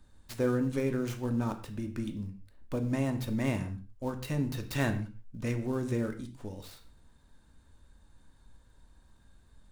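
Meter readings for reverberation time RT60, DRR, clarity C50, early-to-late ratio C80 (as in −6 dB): non-exponential decay, 6.0 dB, 11.5 dB, 15.0 dB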